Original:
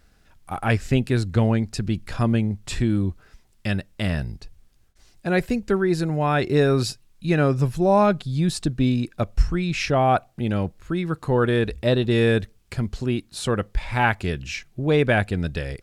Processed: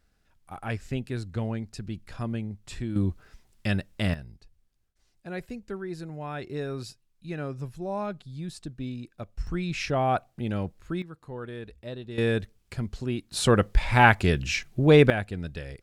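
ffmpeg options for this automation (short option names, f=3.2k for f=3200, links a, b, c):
-af "asetnsamples=n=441:p=0,asendcmd='2.96 volume volume -2dB;4.14 volume volume -14.5dB;9.47 volume volume -6dB;11.02 volume volume -18dB;12.18 volume volume -6dB;13.31 volume volume 3dB;15.1 volume volume -9dB',volume=-11dB"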